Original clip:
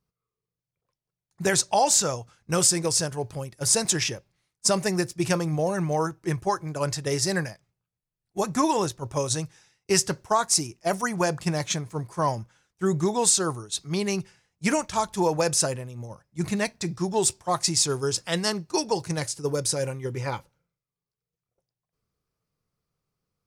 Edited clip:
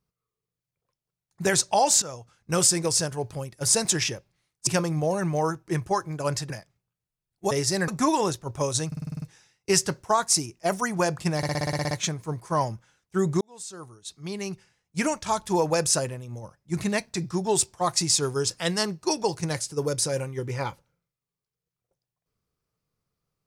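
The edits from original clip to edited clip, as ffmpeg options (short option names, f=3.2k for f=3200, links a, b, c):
-filter_complex "[0:a]asplit=23[a][b][c][d][e][f][g][h][i][j][k][l][m][n][o][p][q][r][s][t][u][v][w];[a]atrim=end=2.02,asetpts=PTS-STARTPTS,afade=t=out:st=2.016:d=0.004:c=hsin:silence=0.237137[x];[b]atrim=start=2.02:end=4.672,asetpts=PTS-STARTPTS,afade=t=in:d=0.55:silence=0.237137[y];[c]atrim=start=5.228:end=7.062[z];[d]atrim=start=7.428:end=8.442[aa];[e]atrim=start=7.058:end=7.432[ab];[f]atrim=start=8.438:end=9.482[ac];[g]atrim=start=9.428:end=9.482[ad];[h]atrim=start=9.428:end=9.482[ae];[i]atrim=start=9.428:end=9.482[af];[j]atrim=start=9.428:end=9.482[ag];[k]atrim=start=9.428:end=9.482[ah];[l]atrim=start=9.428:end=9.482[ai];[m]atrim=start=9.428:end=11.642[aj];[n]atrim=start=11.578:end=11.642[ak];[o]atrim=start=11.578:end=11.642[al];[p]atrim=start=11.578:end=11.642[am];[q]atrim=start=11.578:end=11.642[an];[r]atrim=start=11.578:end=11.642[ao];[s]atrim=start=11.578:end=11.642[ap];[t]atrim=start=11.578:end=11.642[aq];[u]atrim=start=11.578:end=11.642[ar];[v]atrim=start=11.578:end=13.08,asetpts=PTS-STARTPTS,afade=t=out:st=1.498:d=0.004:c=hsin[as];[w]atrim=start=13.08,asetpts=PTS-STARTPTS,afade=t=in:d=2.03[at];[x][y]concat=n=2:v=0:a=1[au];[au][z]acrossfade=d=0.004:c1=hsin:c2=hsin[av];[av][aa]acrossfade=d=0.004:c1=hsin:c2=hsin[aw];[aw][ab]acrossfade=d=0.004:c1=hsin:c2=hsin[ax];[ax][ac]acrossfade=d=0.004:c1=hsin:c2=hsin[ay];[ay][ad]acrossfade=d=0.004:c1=hsin:c2=hsin[az];[az][ae]acrossfade=d=0.004:c1=hsin:c2=hsin[ba];[ba][af]acrossfade=d=0.004:c1=hsin:c2=hsin[bb];[bb][ag]acrossfade=d=0.004:c1=hsin:c2=hsin[bc];[bc][ah]acrossfade=d=0.004:c1=hsin:c2=hsin[bd];[bd][ai]acrossfade=d=0.004:c1=hsin:c2=hsin[be];[be][aj]acrossfade=d=0.004:c1=hsin:c2=hsin[bf];[bf][ak]acrossfade=d=0.004:c1=hsin:c2=hsin[bg];[bg][al]acrossfade=d=0.004:c1=hsin:c2=hsin[bh];[bh][am]acrossfade=d=0.004:c1=hsin:c2=hsin[bi];[bi][an]acrossfade=d=0.004:c1=hsin:c2=hsin[bj];[bj][ao]acrossfade=d=0.004:c1=hsin:c2=hsin[bk];[bk][ap]acrossfade=d=0.004:c1=hsin:c2=hsin[bl];[bl][aq]acrossfade=d=0.004:c1=hsin:c2=hsin[bm];[bm][ar]acrossfade=d=0.004:c1=hsin:c2=hsin[bn];[as][at]concat=n=2:v=0:a=1[bo];[bn][bo]acrossfade=d=0.004:c1=hsin:c2=hsin"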